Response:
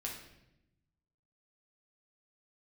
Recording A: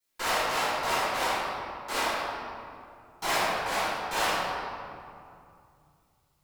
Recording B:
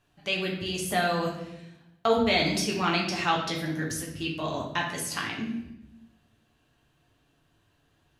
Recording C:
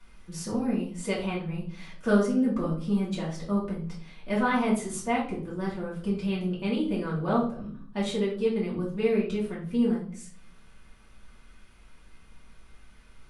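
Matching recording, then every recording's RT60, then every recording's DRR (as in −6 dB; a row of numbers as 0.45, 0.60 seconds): B; 2.4, 0.85, 0.55 seconds; −15.0, −2.5, −7.5 decibels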